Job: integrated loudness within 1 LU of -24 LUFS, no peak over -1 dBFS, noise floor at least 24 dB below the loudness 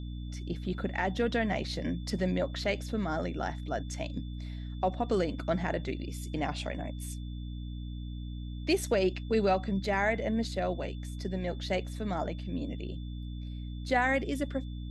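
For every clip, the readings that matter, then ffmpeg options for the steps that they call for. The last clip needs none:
hum 60 Hz; harmonics up to 300 Hz; hum level -36 dBFS; steady tone 3500 Hz; tone level -56 dBFS; loudness -33.0 LUFS; peak -15.5 dBFS; loudness target -24.0 LUFS
-> -af "bandreject=f=60:t=h:w=6,bandreject=f=120:t=h:w=6,bandreject=f=180:t=h:w=6,bandreject=f=240:t=h:w=6,bandreject=f=300:t=h:w=6"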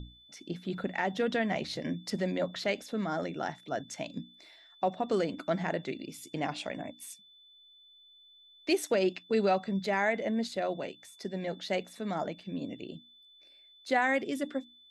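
hum none; steady tone 3500 Hz; tone level -56 dBFS
-> -af "bandreject=f=3.5k:w=30"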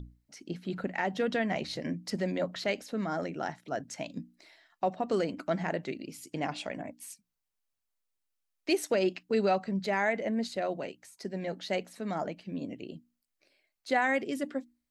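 steady tone none; loudness -33.0 LUFS; peak -15.0 dBFS; loudness target -24.0 LUFS
-> -af "volume=9dB"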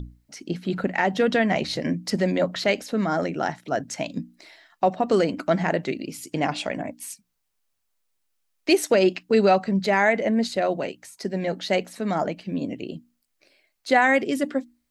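loudness -24.0 LUFS; peak -6.0 dBFS; noise floor -75 dBFS

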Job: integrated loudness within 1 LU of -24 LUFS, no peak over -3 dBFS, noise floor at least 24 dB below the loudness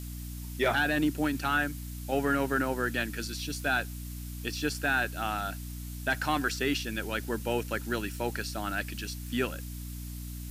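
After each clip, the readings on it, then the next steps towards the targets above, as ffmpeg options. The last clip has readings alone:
hum 60 Hz; harmonics up to 300 Hz; hum level -37 dBFS; noise floor -40 dBFS; noise floor target -56 dBFS; loudness -31.5 LUFS; peak -16.0 dBFS; loudness target -24.0 LUFS
-> -af "bandreject=f=60:t=h:w=6,bandreject=f=120:t=h:w=6,bandreject=f=180:t=h:w=6,bandreject=f=240:t=h:w=6,bandreject=f=300:t=h:w=6"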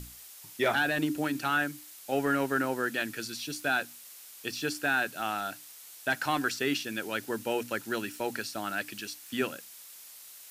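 hum none; noise floor -50 dBFS; noise floor target -55 dBFS
-> -af "afftdn=nr=6:nf=-50"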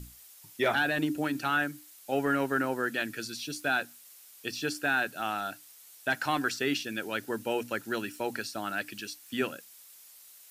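noise floor -54 dBFS; noise floor target -56 dBFS
-> -af "afftdn=nr=6:nf=-54"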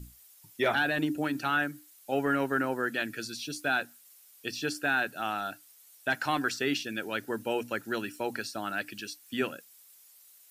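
noise floor -58 dBFS; loudness -31.5 LUFS; peak -16.0 dBFS; loudness target -24.0 LUFS
-> -af "volume=7.5dB"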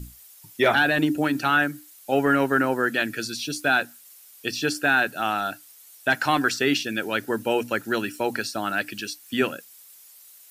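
loudness -24.0 LUFS; peak -8.5 dBFS; noise floor -50 dBFS

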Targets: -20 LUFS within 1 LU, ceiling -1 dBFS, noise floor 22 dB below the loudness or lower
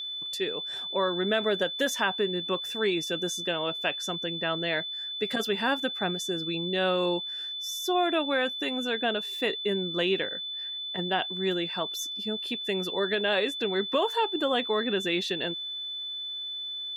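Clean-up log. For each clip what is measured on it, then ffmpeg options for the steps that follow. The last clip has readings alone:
steady tone 3500 Hz; tone level -33 dBFS; loudness -28.5 LUFS; peak -12.5 dBFS; loudness target -20.0 LUFS
-> -af "bandreject=f=3.5k:w=30"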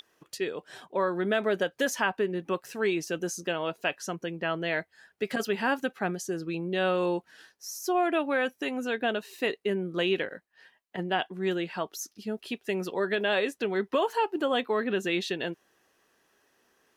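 steady tone none; loudness -30.0 LUFS; peak -13.0 dBFS; loudness target -20.0 LUFS
-> -af "volume=10dB"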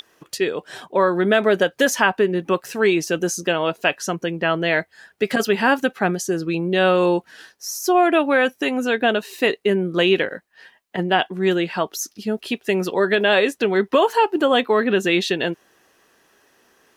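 loudness -20.0 LUFS; peak -3.0 dBFS; noise floor -62 dBFS

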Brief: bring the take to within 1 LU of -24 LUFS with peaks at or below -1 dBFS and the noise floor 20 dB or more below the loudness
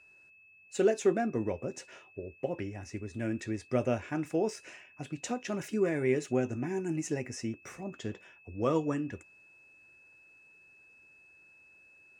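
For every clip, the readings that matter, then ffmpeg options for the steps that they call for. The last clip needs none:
steady tone 2600 Hz; tone level -57 dBFS; loudness -33.0 LUFS; peak -15.0 dBFS; loudness target -24.0 LUFS
-> -af "bandreject=f=2.6k:w=30"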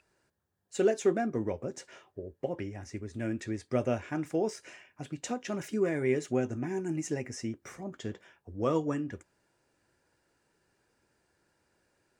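steady tone none; loudness -33.0 LUFS; peak -15.5 dBFS; loudness target -24.0 LUFS
-> -af "volume=9dB"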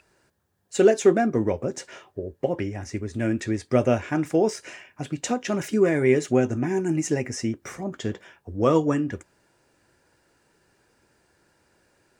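loudness -24.0 LUFS; peak -6.5 dBFS; noise floor -66 dBFS

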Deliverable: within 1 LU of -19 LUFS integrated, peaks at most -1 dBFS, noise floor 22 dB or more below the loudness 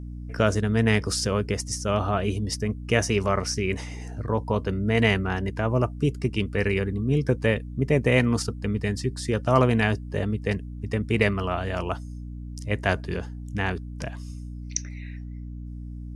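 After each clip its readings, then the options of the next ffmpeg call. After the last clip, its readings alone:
hum 60 Hz; harmonics up to 300 Hz; hum level -33 dBFS; loudness -25.5 LUFS; peak -4.0 dBFS; loudness target -19.0 LUFS
-> -af "bandreject=f=60:t=h:w=6,bandreject=f=120:t=h:w=6,bandreject=f=180:t=h:w=6,bandreject=f=240:t=h:w=6,bandreject=f=300:t=h:w=6"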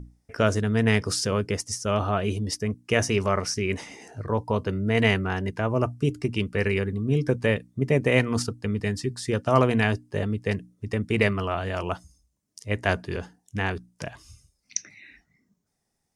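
hum none; loudness -26.0 LUFS; peak -4.5 dBFS; loudness target -19.0 LUFS
-> -af "volume=7dB,alimiter=limit=-1dB:level=0:latency=1"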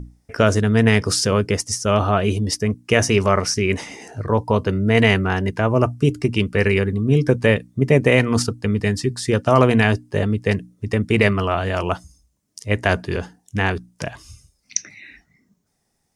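loudness -19.5 LUFS; peak -1.0 dBFS; noise floor -69 dBFS

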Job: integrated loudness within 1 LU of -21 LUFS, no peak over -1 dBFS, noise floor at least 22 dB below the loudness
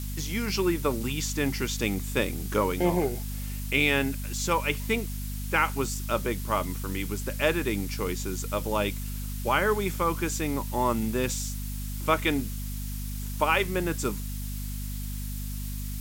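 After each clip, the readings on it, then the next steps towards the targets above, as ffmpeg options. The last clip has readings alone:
hum 50 Hz; harmonics up to 250 Hz; hum level -31 dBFS; noise floor -34 dBFS; noise floor target -51 dBFS; loudness -28.5 LUFS; peak -9.0 dBFS; loudness target -21.0 LUFS
-> -af "bandreject=f=50:t=h:w=6,bandreject=f=100:t=h:w=6,bandreject=f=150:t=h:w=6,bandreject=f=200:t=h:w=6,bandreject=f=250:t=h:w=6"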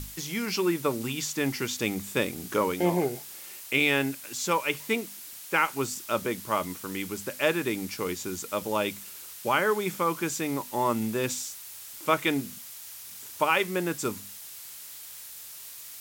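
hum none; noise floor -44 dBFS; noise floor target -51 dBFS
-> -af "afftdn=nr=7:nf=-44"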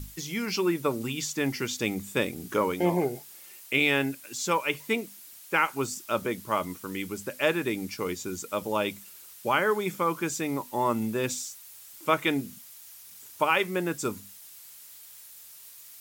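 noise floor -49 dBFS; noise floor target -51 dBFS
-> -af "afftdn=nr=6:nf=-49"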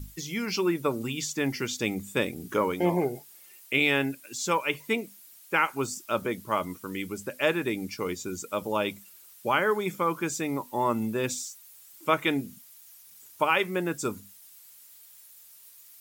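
noise floor -53 dBFS; loudness -28.5 LUFS; peak -9.5 dBFS; loudness target -21.0 LUFS
-> -af "volume=7.5dB"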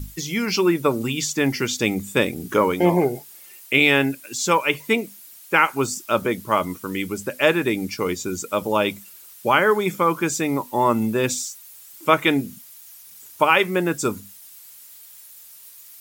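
loudness -21.0 LUFS; peak -2.0 dBFS; noise floor -45 dBFS

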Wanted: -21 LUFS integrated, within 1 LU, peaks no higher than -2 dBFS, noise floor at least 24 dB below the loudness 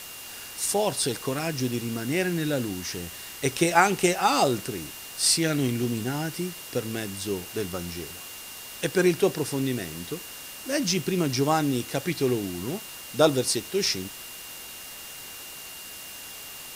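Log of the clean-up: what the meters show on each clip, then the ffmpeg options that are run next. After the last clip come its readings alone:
steady tone 2800 Hz; tone level -46 dBFS; noise floor -41 dBFS; noise floor target -51 dBFS; loudness -26.5 LUFS; peak -4.0 dBFS; loudness target -21.0 LUFS
-> -af "bandreject=f=2.8k:w=30"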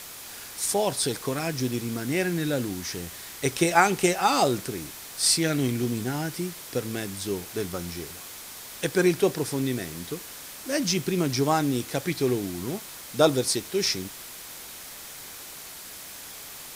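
steady tone none; noise floor -42 dBFS; noise floor target -51 dBFS
-> -af "afftdn=nr=9:nf=-42"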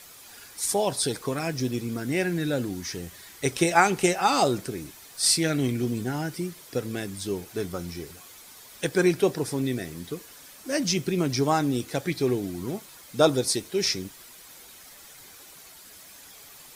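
noise floor -48 dBFS; noise floor target -50 dBFS
-> -af "afftdn=nr=6:nf=-48"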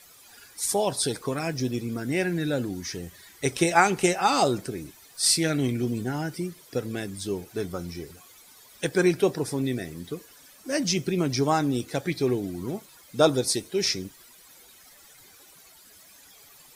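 noise floor -53 dBFS; loudness -26.0 LUFS; peak -4.0 dBFS; loudness target -21.0 LUFS
-> -af "volume=5dB,alimiter=limit=-2dB:level=0:latency=1"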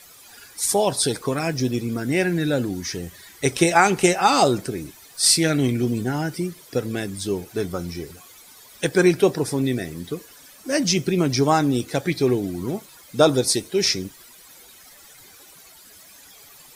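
loudness -21.5 LUFS; peak -2.0 dBFS; noise floor -48 dBFS

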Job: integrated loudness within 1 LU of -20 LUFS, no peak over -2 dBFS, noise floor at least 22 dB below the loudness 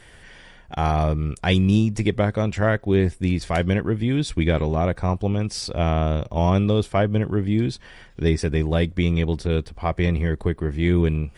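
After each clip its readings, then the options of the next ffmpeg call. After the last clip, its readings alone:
loudness -22.0 LUFS; peak -6.0 dBFS; loudness target -20.0 LUFS
-> -af "volume=2dB"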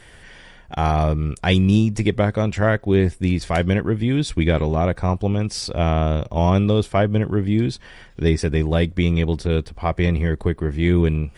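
loudness -20.0 LUFS; peak -4.0 dBFS; noise floor -46 dBFS

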